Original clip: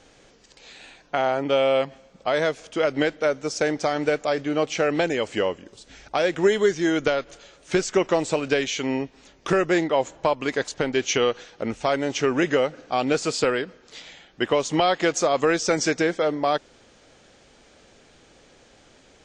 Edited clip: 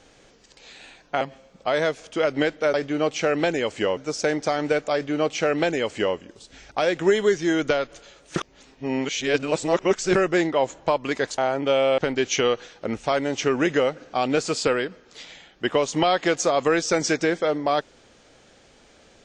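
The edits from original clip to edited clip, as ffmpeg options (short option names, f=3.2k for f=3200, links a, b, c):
-filter_complex "[0:a]asplit=8[a][b][c][d][e][f][g][h];[a]atrim=end=1.212[i];[b]atrim=start=1.808:end=3.342[j];[c]atrim=start=4.298:end=5.532[k];[d]atrim=start=3.338:end=7.732[l];[e]atrim=start=7.728:end=9.522,asetpts=PTS-STARTPTS,areverse[m];[f]atrim=start=9.518:end=10.752[n];[g]atrim=start=1.208:end=1.812[o];[h]atrim=start=10.748[p];[i][j]acrossfade=d=0.004:c1=hsin:c2=hsin[q];[q][k]acrossfade=d=0.004:c1=hsin:c2=hsin[r];[r][l]acrossfade=d=0.004:c1=hsin:c2=hsin[s];[s][m]acrossfade=d=0.004:c1=hsin:c2=hsin[t];[t][n]acrossfade=d=0.004:c1=hsin:c2=hsin[u];[u][o]acrossfade=d=0.004:c1=hsin:c2=hsin[v];[v][p]acrossfade=d=0.004:c1=hsin:c2=hsin"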